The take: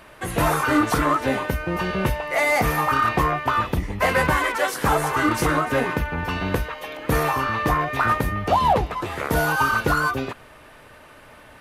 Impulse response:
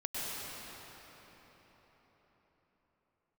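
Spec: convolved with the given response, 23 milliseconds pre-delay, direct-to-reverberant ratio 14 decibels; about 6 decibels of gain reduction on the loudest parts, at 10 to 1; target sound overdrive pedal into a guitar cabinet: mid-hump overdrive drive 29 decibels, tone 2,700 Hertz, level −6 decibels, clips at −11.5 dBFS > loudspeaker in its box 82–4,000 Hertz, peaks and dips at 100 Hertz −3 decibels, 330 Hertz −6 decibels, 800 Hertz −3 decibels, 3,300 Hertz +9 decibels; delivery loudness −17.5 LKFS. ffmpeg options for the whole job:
-filter_complex "[0:a]acompressor=threshold=-21dB:ratio=10,asplit=2[link_01][link_02];[1:a]atrim=start_sample=2205,adelay=23[link_03];[link_02][link_03]afir=irnorm=-1:irlink=0,volume=-19dB[link_04];[link_01][link_04]amix=inputs=2:normalize=0,asplit=2[link_05][link_06];[link_06]highpass=frequency=720:poles=1,volume=29dB,asoftclip=type=tanh:threshold=-11.5dB[link_07];[link_05][link_07]amix=inputs=2:normalize=0,lowpass=frequency=2700:poles=1,volume=-6dB,highpass=82,equalizer=frequency=100:width_type=q:width=4:gain=-3,equalizer=frequency=330:width_type=q:width=4:gain=-6,equalizer=frequency=800:width_type=q:width=4:gain=-3,equalizer=frequency=3300:width_type=q:width=4:gain=9,lowpass=frequency=4000:width=0.5412,lowpass=frequency=4000:width=1.3066,volume=1dB"

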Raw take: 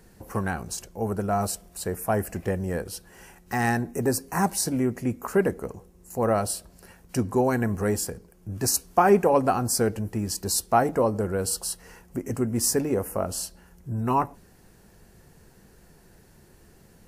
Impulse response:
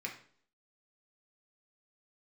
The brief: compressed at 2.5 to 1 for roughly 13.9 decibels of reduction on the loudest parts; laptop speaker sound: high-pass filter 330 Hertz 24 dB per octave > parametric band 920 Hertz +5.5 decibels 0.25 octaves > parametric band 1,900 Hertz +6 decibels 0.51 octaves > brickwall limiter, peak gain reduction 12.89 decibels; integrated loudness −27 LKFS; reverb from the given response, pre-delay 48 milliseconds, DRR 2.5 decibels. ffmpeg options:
-filter_complex "[0:a]acompressor=threshold=-36dB:ratio=2.5,asplit=2[link_01][link_02];[1:a]atrim=start_sample=2205,adelay=48[link_03];[link_02][link_03]afir=irnorm=-1:irlink=0,volume=-4dB[link_04];[link_01][link_04]amix=inputs=2:normalize=0,highpass=frequency=330:width=0.5412,highpass=frequency=330:width=1.3066,equalizer=frequency=920:width_type=o:width=0.25:gain=5.5,equalizer=frequency=1900:width_type=o:width=0.51:gain=6,volume=13dB,alimiter=limit=-16.5dB:level=0:latency=1"

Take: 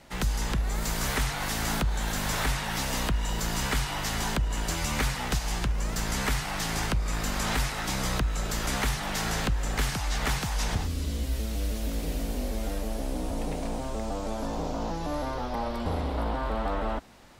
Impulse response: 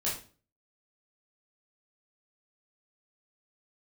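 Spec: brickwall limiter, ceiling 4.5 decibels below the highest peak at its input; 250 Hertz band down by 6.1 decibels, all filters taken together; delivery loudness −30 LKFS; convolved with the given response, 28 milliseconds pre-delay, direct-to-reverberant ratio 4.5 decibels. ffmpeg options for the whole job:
-filter_complex "[0:a]equalizer=frequency=250:width_type=o:gain=-8.5,alimiter=limit=-22dB:level=0:latency=1,asplit=2[link_01][link_02];[1:a]atrim=start_sample=2205,adelay=28[link_03];[link_02][link_03]afir=irnorm=-1:irlink=0,volume=-10dB[link_04];[link_01][link_04]amix=inputs=2:normalize=0,volume=1dB"

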